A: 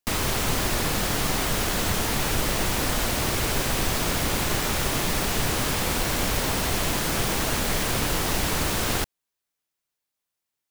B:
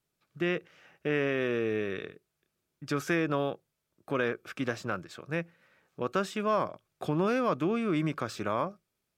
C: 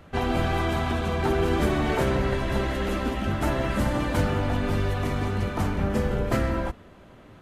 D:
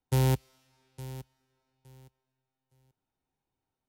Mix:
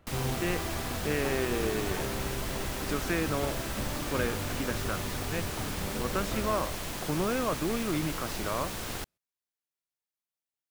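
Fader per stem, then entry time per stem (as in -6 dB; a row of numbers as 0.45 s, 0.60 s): -11.5 dB, -2.5 dB, -12.0 dB, -10.5 dB; 0.00 s, 0.00 s, 0.00 s, 0.00 s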